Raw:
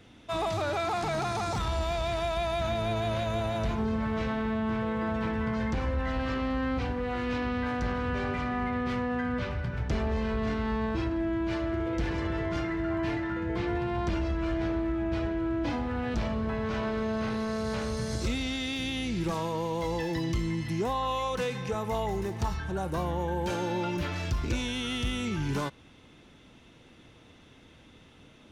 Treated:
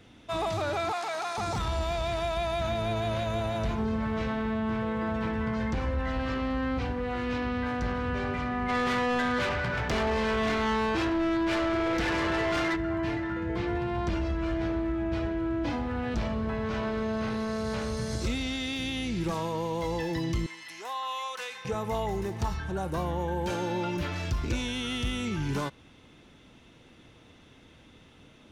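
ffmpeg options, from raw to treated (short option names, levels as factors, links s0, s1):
-filter_complex "[0:a]asettb=1/sr,asplit=3[s0][s1][s2];[s0]atrim=end=0.924[s3];[s1]atrim=start=0.92:end=1.38,asetpts=PTS-STARTPTS,afade=t=in:d=0.004:c=qsin,afade=t=out:st=0.456:d=0.004:c=qsin,highpass=620[s4];[s2]atrim=start=1.376[s5];[s3][s4]acrossfade=d=0.004:c1=hsin:c2=qsin[s6];[s6][s5]acrossfade=d=0.004:c1=qsin:c2=hsin,asplit=3[s7][s8][s9];[s7]afade=t=out:st=8.68:d=0.02[s10];[s8]asplit=2[s11][s12];[s12]highpass=f=720:p=1,volume=11.2,asoftclip=type=tanh:threshold=0.0891[s13];[s11][s13]amix=inputs=2:normalize=0,lowpass=f=5100:p=1,volume=0.501,afade=t=in:st=8.68:d=0.02,afade=t=out:st=12.75:d=0.02[s14];[s9]afade=t=in:st=12.75:d=0.02[s15];[s10][s14][s15]amix=inputs=3:normalize=0,asettb=1/sr,asplit=3[s16][s17][s18];[s16]atrim=end=20.464[s19];[s17]atrim=start=20.46:end=21.65,asetpts=PTS-STARTPTS,afade=t=in:d=0.004:c=qsin,afade=t=out:st=1.186:d=0.004:c=qsin,highpass=1000[s20];[s18]atrim=start=21.646[s21];[s19][s20]acrossfade=d=0.004:c1=hsin:c2=qsin[s22];[s22][s21]acrossfade=d=0.004:c1=qsin:c2=hsin"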